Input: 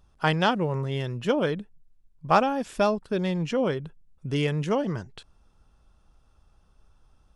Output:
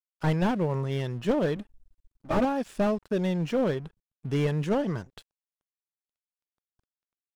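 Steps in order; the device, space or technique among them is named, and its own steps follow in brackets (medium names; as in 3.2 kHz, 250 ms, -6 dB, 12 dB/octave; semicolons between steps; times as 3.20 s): 1.56–2.45 s: comb 3.3 ms, depth 96%; early transistor amplifier (crossover distortion -49.5 dBFS; slew-rate limiter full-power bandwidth 47 Hz)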